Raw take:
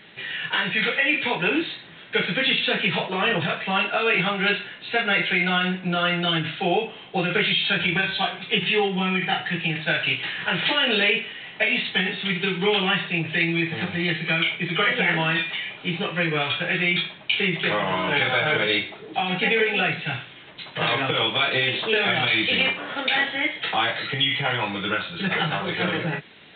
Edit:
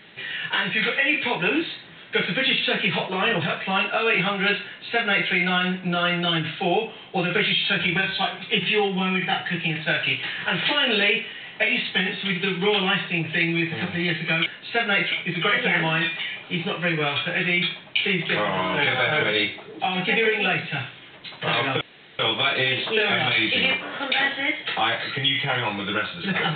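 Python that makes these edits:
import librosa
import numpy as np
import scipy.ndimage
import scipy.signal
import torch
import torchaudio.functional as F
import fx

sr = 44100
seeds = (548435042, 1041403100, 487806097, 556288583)

y = fx.edit(x, sr, fx.duplicate(start_s=4.65, length_s=0.66, to_s=14.46),
    fx.insert_room_tone(at_s=21.15, length_s=0.38), tone=tone)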